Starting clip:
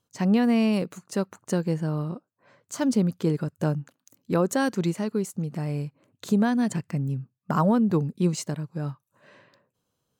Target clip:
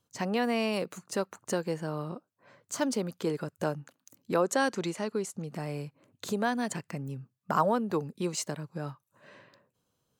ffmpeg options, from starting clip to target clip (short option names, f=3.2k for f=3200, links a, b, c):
-filter_complex "[0:a]asettb=1/sr,asplit=3[a][b][c];[a]atrim=end=4.424[d];[b]atrim=start=4.42:end=5.48,asetpts=PTS-STARTPTS,afade=t=in:d=0.004:c=qsin,afade=t=out:st=1.056:d=0.004:c=qsin,lowpass=10k[e];[c]atrim=start=5.476[f];[d][e]acrossfade=d=0.004:c1=hsin:c2=qsin[g];[g][f]acrossfade=d=0.004:c1=qsin:c2=hsin,acrossover=split=370|1200[h][i][j];[h]acompressor=threshold=-38dB:ratio=5[k];[k][i][j]amix=inputs=3:normalize=0"